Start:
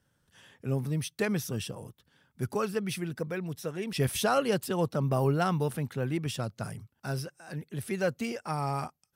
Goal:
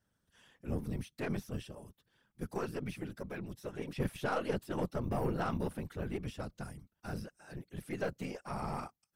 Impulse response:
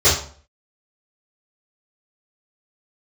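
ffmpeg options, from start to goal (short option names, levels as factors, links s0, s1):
-filter_complex "[0:a]afftfilt=real='hypot(re,im)*cos(2*PI*random(0))':imag='hypot(re,im)*sin(2*PI*random(1))':win_size=512:overlap=0.75,acrossover=split=2600[s0][s1];[s1]acompressor=threshold=0.00251:ratio=4:attack=1:release=60[s2];[s0][s2]amix=inputs=2:normalize=0,aeval=exprs='0.112*(cos(1*acos(clip(val(0)/0.112,-1,1)))-cos(1*PI/2))+0.00562*(cos(8*acos(clip(val(0)/0.112,-1,1)))-cos(8*PI/2))':c=same,volume=0.841"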